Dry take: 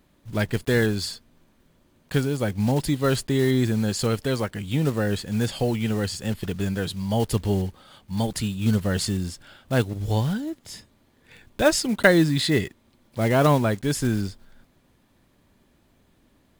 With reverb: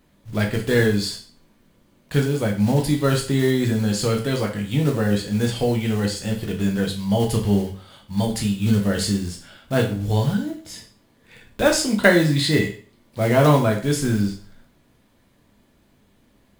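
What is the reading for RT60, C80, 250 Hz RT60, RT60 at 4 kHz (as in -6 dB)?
0.45 s, 13.5 dB, 0.45 s, 0.40 s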